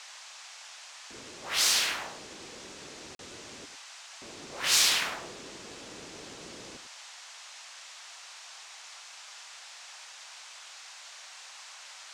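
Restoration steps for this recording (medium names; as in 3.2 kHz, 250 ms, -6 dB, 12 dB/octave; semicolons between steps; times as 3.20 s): band-stop 2.6 kHz, Q 30; interpolate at 3.15 s, 42 ms; noise print and reduce 30 dB; inverse comb 101 ms -12 dB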